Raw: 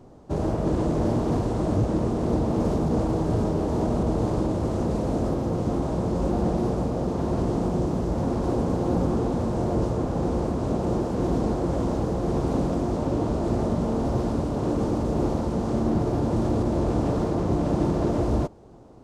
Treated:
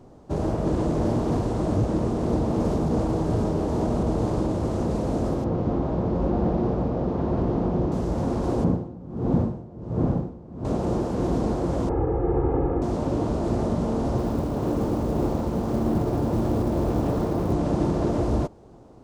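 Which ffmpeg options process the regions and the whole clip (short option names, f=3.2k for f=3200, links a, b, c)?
-filter_complex "[0:a]asettb=1/sr,asplit=3[a][b][c];[a]atrim=end=5.444[d];[b]atrim=start=5.44:end=7.92,asetpts=PTS-STARTPTS,afade=t=in:d=0.004:c=qsin,afade=t=out:st=2.476:d=0.004:c=qsin,lowpass=5.5k,aemphasis=mode=reproduction:type=75fm[e];[c]atrim=start=7.916[f];[d][e]acrossfade=d=0.004:c1=hsin:c2=qsin[g];[g][f]acrossfade=d=0.004:c1=qsin:c2=hsin,asettb=1/sr,asplit=3[h][i][j];[h]atrim=end=8.644[k];[i]atrim=start=8.64:end=10.65,asetpts=PTS-STARTPTS,afade=t=in:d=0.004:c=qsin,afade=t=out:st=2.006:d=0.004:c=qsin,lowpass=f=1.8k:p=1,equalizer=f=150:w=0.71:g=8.5,aeval=exprs='val(0)*pow(10,-23*(0.5-0.5*cos(2*PI*1.4*n/s))/20)':c=same[l];[j]atrim=start=10.646[m];[k][l]acrossfade=d=0.004:c1=hsin:c2=qsin[n];[n][m]acrossfade=d=0.004:c1=qsin:c2=hsin,asettb=1/sr,asplit=3[o][p][q];[o]atrim=end=11.894[r];[p]atrim=start=11.89:end=12.82,asetpts=PTS-STARTPTS,afade=t=in:d=0.004:c=qsin,afade=t=out:st=0.926:d=0.004:c=qsin,lowpass=f=2.1k:w=0.5412,lowpass=f=2.1k:w=1.3066,aemphasis=mode=reproduction:type=75kf,aecho=1:1:2.4:0.79,atrim=end_sample=41013[s];[q]atrim=start=12.816[t];[r][s]acrossfade=d=0.004:c1=hsin:c2=qsin[u];[u][t]acrossfade=d=0.004:c1=qsin:c2=hsin,asettb=1/sr,asplit=3[v][w][x];[v]atrim=end=14.184[y];[w]atrim=start=14.18:end=17.53,asetpts=PTS-STARTPTS,afade=t=in:d=0.004:c=qsin,afade=t=out:st=3.346:d=0.004:c=qsin,highshelf=f=4.9k:g=-5,acrusher=bits=8:mode=log:mix=0:aa=0.000001[z];[x]atrim=start=17.526[aa];[y][z]acrossfade=d=0.004:c1=hsin:c2=qsin[ab];[ab][aa]acrossfade=d=0.004:c1=qsin:c2=hsin"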